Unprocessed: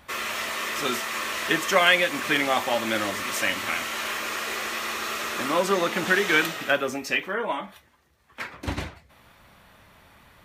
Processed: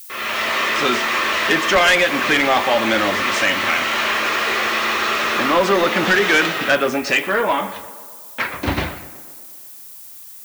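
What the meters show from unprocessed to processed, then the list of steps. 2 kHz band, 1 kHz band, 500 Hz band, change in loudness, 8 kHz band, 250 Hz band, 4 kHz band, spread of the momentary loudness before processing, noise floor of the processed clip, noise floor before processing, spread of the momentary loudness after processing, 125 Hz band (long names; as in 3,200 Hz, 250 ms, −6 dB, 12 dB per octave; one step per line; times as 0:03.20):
+8.0 dB, +8.5 dB, +7.5 dB, +7.5 dB, +4.0 dB, +8.0 dB, +7.5 dB, 12 LU, −39 dBFS, −58 dBFS, 21 LU, +7.0 dB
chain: fade in at the beginning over 0.58 s
noise gate with hold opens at −41 dBFS
low-pass filter 4,500 Hz 12 dB per octave
low-shelf EQ 180 Hz −4.5 dB
in parallel at 0 dB: downward compressor, threshold −34 dBFS, peak gain reduction 18.5 dB
on the sum: background noise violet −47 dBFS
soft clipping −17.5 dBFS, distortion −12 dB
on a send: tape delay 120 ms, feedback 71%, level −14 dB, low-pass 2,600 Hz
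on the sum: level +8.5 dB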